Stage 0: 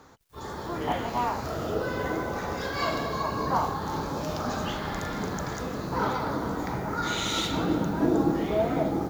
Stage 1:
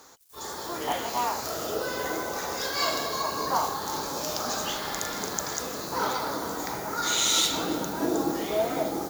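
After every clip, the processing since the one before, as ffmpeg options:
-af "bass=f=250:g=-12,treble=f=4k:g=14"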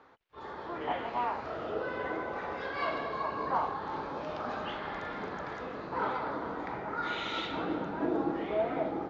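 -af "lowpass=f=2.7k:w=0.5412,lowpass=f=2.7k:w=1.3066,volume=-4dB"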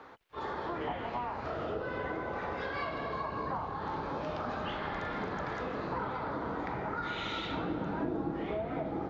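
-filter_complex "[0:a]acrossover=split=170[a][b];[b]acompressor=threshold=-41dB:ratio=10[c];[a][c]amix=inputs=2:normalize=0,volume=7.5dB"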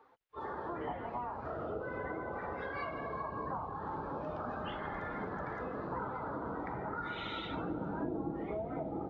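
-af "afftdn=nr=14:nf=-42,volume=-3dB"

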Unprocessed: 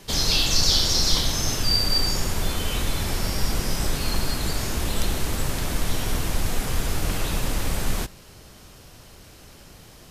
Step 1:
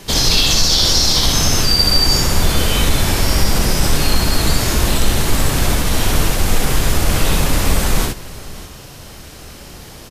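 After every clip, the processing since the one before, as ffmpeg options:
-af "alimiter=limit=-14dB:level=0:latency=1:release=60,aecho=1:1:64|78|601:0.708|0.335|0.133,acontrast=26,volume=4dB"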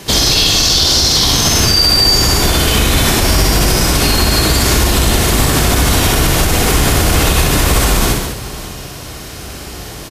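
-filter_complex "[0:a]highpass=42,asplit=2[a][b];[b]aecho=0:1:61.22|207:0.794|0.447[c];[a][c]amix=inputs=2:normalize=0,alimiter=level_in=6.5dB:limit=-1dB:release=50:level=0:latency=1,volume=-1dB"

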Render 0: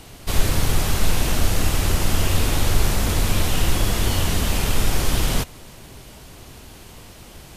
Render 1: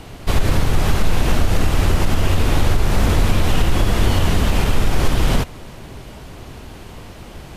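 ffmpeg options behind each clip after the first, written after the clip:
-af "highshelf=f=4k:g=-12,alimiter=limit=-12.5dB:level=0:latency=1:release=103,volume=7dB"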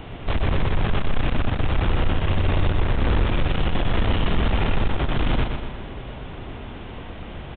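-af "aresample=8000,asoftclip=type=tanh:threshold=-17dB,aresample=44100,aecho=1:1:122|244|366|488|610|732:0.501|0.261|0.136|0.0705|0.0366|0.0191"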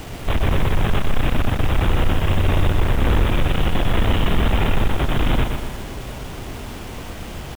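-af "acrusher=bits=6:mix=0:aa=0.000001,volume=3dB"

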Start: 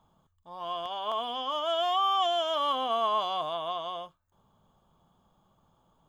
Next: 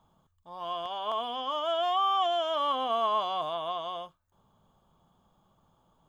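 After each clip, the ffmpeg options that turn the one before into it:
-filter_complex "[0:a]acrossover=split=2900[a][b];[b]acompressor=threshold=-43dB:ratio=4:attack=1:release=60[c];[a][c]amix=inputs=2:normalize=0"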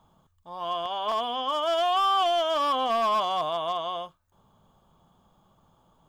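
-af "asoftclip=type=hard:threshold=-24.5dB,volume=4.5dB"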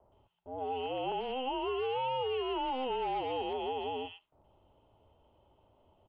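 -filter_complex "[0:a]acrossover=split=2000[a][b];[b]adelay=120[c];[a][c]amix=inputs=2:normalize=0,acrossover=split=630|2400[d][e][f];[d]acompressor=threshold=-44dB:ratio=4[g];[e]acompressor=threshold=-33dB:ratio=4[h];[f]acompressor=threshold=-44dB:ratio=4[i];[g][h][i]amix=inputs=3:normalize=0,highpass=f=160:t=q:w=0.5412,highpass=f=160:t=q:w=1.307,lowpass=f=3.5k:t=q:w=0.5176,lowpass=f=3.5k:t=q:w=0.7071,lowpass=f=3.5k:t=q:w=1.932,afreqshift=-260,volume=-1.5dB"

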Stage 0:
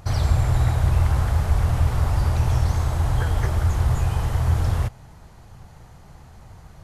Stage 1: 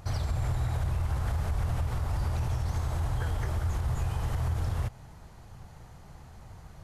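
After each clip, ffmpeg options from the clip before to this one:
-af "alimiter=limit=-18.5dB:level=0:latency=1:release=111,volume=-3.5dB"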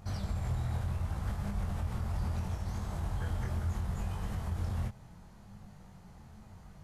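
-af "flanger=delay=20:depth=3.3:speed=0.71,equalizer=f=200:t=o:w=0.32:g=13,volume=-2.5dB"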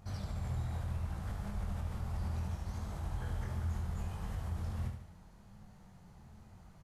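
-af "aecho=1:1:73|146|219|292|365:0.447|0.201|0.0905|0.0407|0.0183,volume=-5dB"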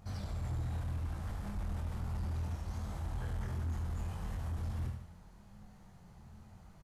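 -filter_complex "[0:a]asoftclip=type=hard:threshold=-34.5dB,asplit=2[a][b];[b]adelay=24,volume=-11dB[c];[a][c]amix=inputs=2:normalize=0"

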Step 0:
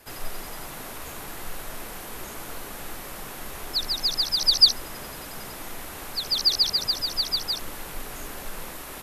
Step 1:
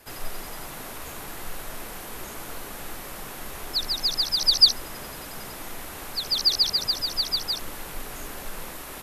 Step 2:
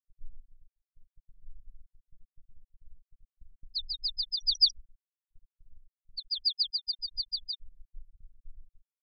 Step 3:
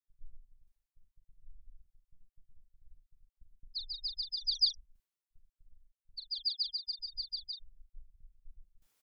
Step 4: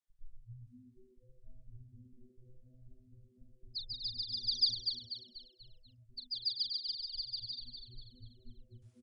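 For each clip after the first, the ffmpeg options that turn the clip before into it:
-af anull
-af "afftfilt=real='re*gte(hypot(re,im),0.178)':imag='im*gte(hypot(re,im),0.178)':win_size=1024:overlap=0.75,agate=range=-14dB:threshold=-45dB:ratio=16:detection=peak,volume=-7.5dB"
-filter_complex "[0:a]areverse,acompressor=mode=upward:threshold=-50dB:ratio=2.5,areverse,asplit=2[a][b];[b]adelay=41,volume=-9dB[c];[a][c]amix=inputs=2:normalize=0,volume=-5.5dB"
-filter_complex "[0:a]aresample=22050,aresample=44100,asplit=2[a][b];[b]asplit=5[c][d][e][f][g];[c]adelay=244,afreqshift=-130,volume=-6.5dB[h];[d]adelay=488,afreqshift=-260,volume=-14.2dB[i];[e]adelay=732,afreqshift=-390,volume=-22dB[j];[f]adelay=976,afreqshift=-520,volume=-29.7dB[k];[g]adelay=1220,afreqshift=-650,volume=-37.5dB[l];[h][i][j][k][l]amix=inputs=5:normalize=0[m];[a][m]amix=inputs=2:normalize=0,volume=-1.5dB"

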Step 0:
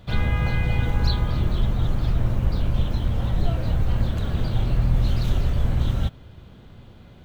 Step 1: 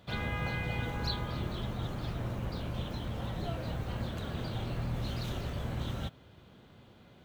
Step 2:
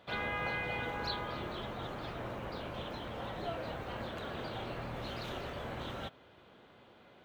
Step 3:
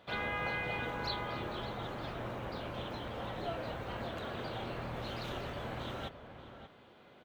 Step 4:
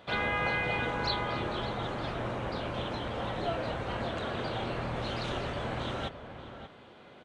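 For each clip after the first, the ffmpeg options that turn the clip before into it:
-af "highpass=f=220:p=1,volume=-5.5dB"
-af "bass=f=250:g=-14,treble=f=4k:g=-10,volume=2.5dB"
-filter_complex "[0:a]asplit=2[a][b];[b]adelay=583.1,volume=-10dB,highshelf=f=4k:g=-13.1[c];[a][c]amix=inputs=2:normalize=0"
-af "aresample=22050,aresample=44100,volume=6dB"

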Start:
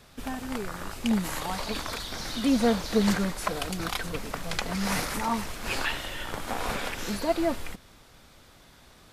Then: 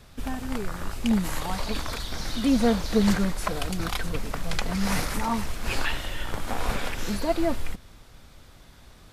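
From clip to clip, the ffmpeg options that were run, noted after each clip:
-af "lowshelf=f=120:g=10"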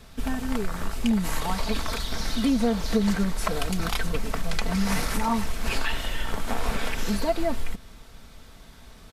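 -af "aecho=1:1:4.5:0.36,acompressor=threshold=-21dB:ratio=6,volume=2dB"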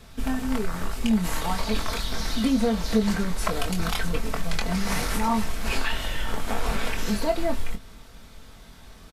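-filter_complex "[0:a]asplit=2[a][b];[b]adelay=23,volume=-7dB[c];[a][c]amix=inputs=2:normalize=0"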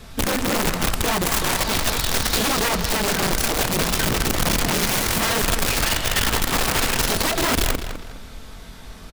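-filter_complex "[0:a]asplit=2[a][b];[b]acompressor=threshold=-29dB:ratio=20,volume=-2.5dB[c];[a][c]amix=inputs=2:normalize=0,aeval=exprs='(mod(8.41*val(0)+1,2)-1)/8.41':c=same,asplit=2[d][e];[e]adelay=205,lowpass=f=4.5k:p=1,volume=-9dB,asplit=2[f][g];[g]adelay=205,lowpass=f=4.5k:p=1,volume=0.34,asplit=2[h][i];[i]adelay=205,lowpass=f=4.5k:p=1,volume=0.34,asplit=2[j][k];[k]adelay=205,lowpass=f=4.5k:p=1,volume=0.34[l];[d][f][h][j][l]amix=inputs=5:normalize=0,volume=2dB"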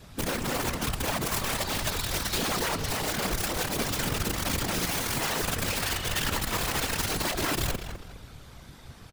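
-af "afftfilt=real='hypot(re,im)*cos(2*PI*random(0))':imag='hypot(re,im)*sin(2*PI*random(1))':win_size=512:overlap=0.75,volume=-2dB"

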